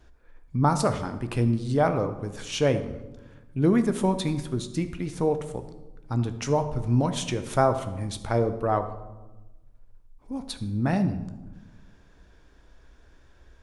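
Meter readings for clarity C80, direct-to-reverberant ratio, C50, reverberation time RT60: 13.5 dB, 8.5 dB, 11.5 dB, 1.1 s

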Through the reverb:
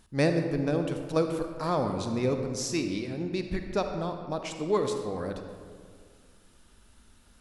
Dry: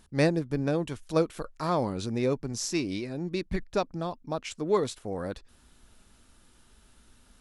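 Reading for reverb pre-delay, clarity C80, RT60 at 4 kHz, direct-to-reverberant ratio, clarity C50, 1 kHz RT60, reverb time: 37 ms, 7.0 dB, 1.1 s, 5.5 dB, 6.0 dB, 1.8 s, 2.0 s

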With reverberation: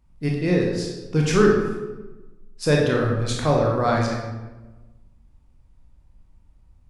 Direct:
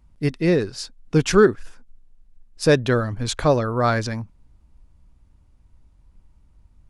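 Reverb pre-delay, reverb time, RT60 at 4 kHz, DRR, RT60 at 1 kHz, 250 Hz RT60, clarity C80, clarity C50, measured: 20 ms, 1.2 s, 0.75 s, -2.0 dB, 1.1 s, 1.4 s, 5.0 dB, 2.0 dB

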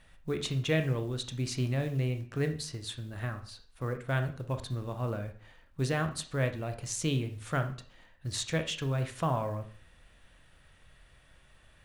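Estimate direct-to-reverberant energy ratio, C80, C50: 7.0 dB, 16.0 dB, 11.5 dB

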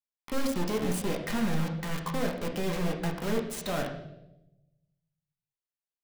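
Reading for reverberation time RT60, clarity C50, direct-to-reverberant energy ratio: 0.90 s, 7.0 dB, 0.5 dB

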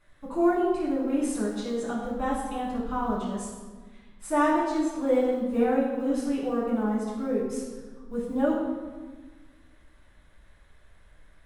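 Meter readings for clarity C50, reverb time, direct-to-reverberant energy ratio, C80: 1.5 dB, 1.4 s, -8.0 dB, 4.0 dB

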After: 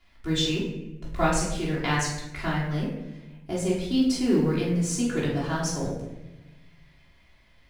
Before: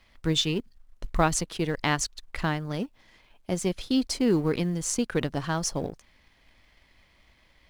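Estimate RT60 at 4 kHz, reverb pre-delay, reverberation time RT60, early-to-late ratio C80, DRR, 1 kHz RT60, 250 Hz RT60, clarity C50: 0.65 s, 3 ms, 1.1 s, 6.0 dB, -9.0 dB, 0.85 s, 1.5 s, 2.5 dB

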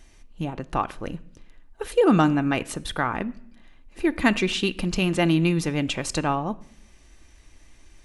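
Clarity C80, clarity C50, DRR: 23.5 dB, 20.5 dB, 11.0 dB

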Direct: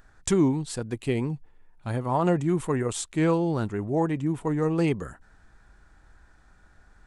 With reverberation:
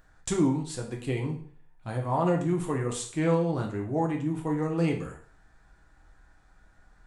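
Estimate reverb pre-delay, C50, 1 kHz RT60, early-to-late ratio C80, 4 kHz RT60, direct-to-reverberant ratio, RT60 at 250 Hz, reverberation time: 4 ms, 8.0 dB, 0.50 s, 13.0 dB, 0.45 s, 0.5 dB, 0.45 s, 0.50 s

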